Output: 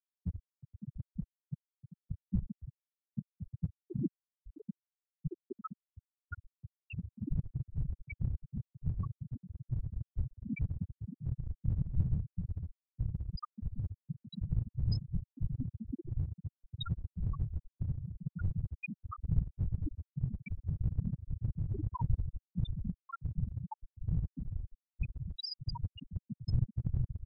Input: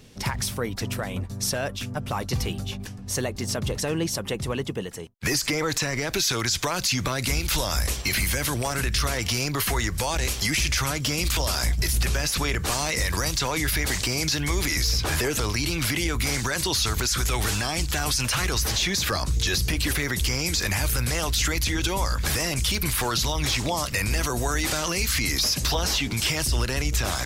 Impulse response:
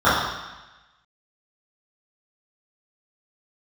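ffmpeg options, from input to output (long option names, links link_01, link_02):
-filter_complex "[0:a]aecho=1:1:0.8:0.72,afftfilt=real='hypot(re,im)*cos(2*PI*random(0))':imag='hypot(re,im)*sin(2*PI*random(1))':win_size=512:overlap=0.75,afftfilt=real='re*gte(hypot(re,im),0.282)':imag='im*gte(hypot(re,im),0.282)':win_size=1024:overlap=0.75,acrossover=split=120|1300[link_01][link_02][link_03];[link_01]aeval=exprs='clip(val(0),-1,0.0126)':channel_layout=same[link_04];[link_04][link_02][link_03]amix=inputs=3:normalize=0,volume=-1.5dB"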